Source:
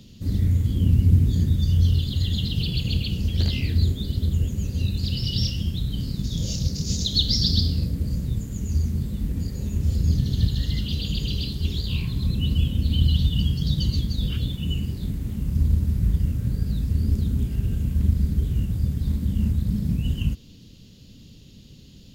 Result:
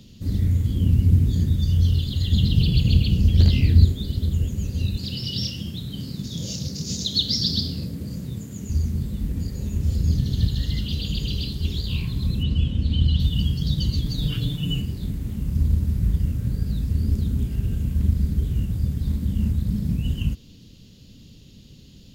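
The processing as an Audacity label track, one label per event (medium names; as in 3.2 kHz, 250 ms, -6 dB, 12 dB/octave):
2.320000	3.850000	bass shelf 370 Hz +7.5 dB
4.970000	8.700000	high-pass 130 Hz
12.430000	13.200000	distance through air 75 m
14.050000	14.820000	comb 6.8 ms, depth 93%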